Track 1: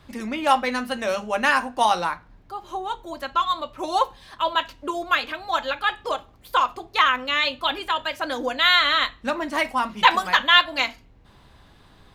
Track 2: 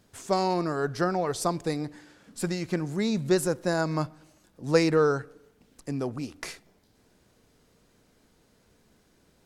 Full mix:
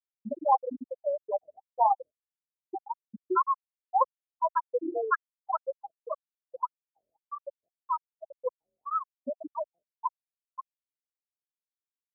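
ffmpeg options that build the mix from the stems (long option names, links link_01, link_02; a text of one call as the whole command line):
ffmpeg -i stem1.wav -i stem2.wav -filter_complex "[0:a]lowpass=frequency=1600:width=0.5412,lowpass=frequency=1600:width=1.3066,volume=-2.5dB,afade=type=out:start_time=9.61:duration=0.4:silence=0.316228[link_01];[1:a]adynamicequalizer=threshold=0.00891:dfrequency=780:dqfactor=1.3:tfrequency=780:tqfactor=1.3:attack=5:release=100:ratio=0.375:range=3:mode=cutabove:tftype=bell,volume=-6.5dB[link_02];[link_01][link_02]amix=inputs=2:normalize=0,afftfilt=real='re*gte(hypot(re,im),0.355)':imag='im*gte(hypot(re,im),0.355)':win_size=1024:overlap=0.75,highpass=50,afftfilt=real='re*lt(b*sr/1024,610*pow(2100/610,0.5+0.5*sin(2*PI*1.8*pts/sr)))':imag='im*lt(b*sr/1024,610*pow(2100/610,0.5+0.5*sin(2*PI*1.8*pts/sr)))':win_size=1024:overlap=0.75" out.wav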